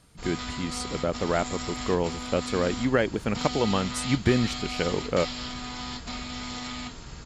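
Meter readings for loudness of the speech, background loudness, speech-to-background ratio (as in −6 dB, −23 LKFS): −28.0 LKFS, −34.5 LKFS, 6.5 dB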